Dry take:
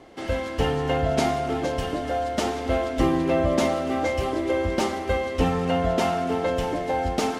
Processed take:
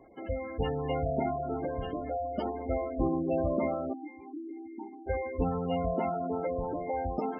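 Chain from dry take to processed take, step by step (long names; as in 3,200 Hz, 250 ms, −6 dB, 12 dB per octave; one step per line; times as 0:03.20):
0:03.93–0:05.07: formant filter u
gate on every frequency bin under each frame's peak −15 dB strong
level −7 dB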